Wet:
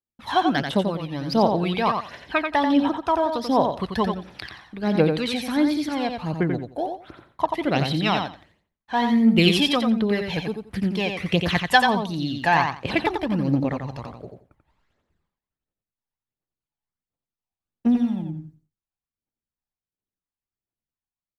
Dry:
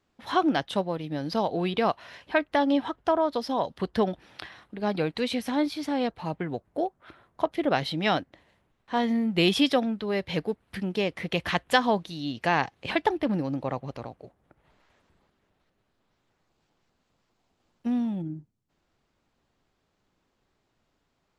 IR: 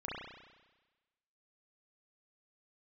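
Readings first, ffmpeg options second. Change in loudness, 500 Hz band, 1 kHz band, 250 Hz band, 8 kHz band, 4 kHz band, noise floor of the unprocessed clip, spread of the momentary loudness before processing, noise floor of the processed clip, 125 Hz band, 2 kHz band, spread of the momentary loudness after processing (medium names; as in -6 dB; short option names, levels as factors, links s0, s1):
+5.0 dB, +2.5 dB, +5.0 dB, +5.5 dB, +5.0 dB, +5.0 dB, -75 dBFS, 10 LU, under -85 dBFS, +8.0 dB, +5.5 dB, 12 LU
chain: -af "agate=range=0.0224:threshold=0.00178:ratio=3:detection=peak,aphaser=in_gain=1:out_gain=1:delay=1.3:decay=0.59:speed=1.4:type=triangular,aecho=1:1:88|176|264:0.531|0.0956|0.0172,volume=1.26"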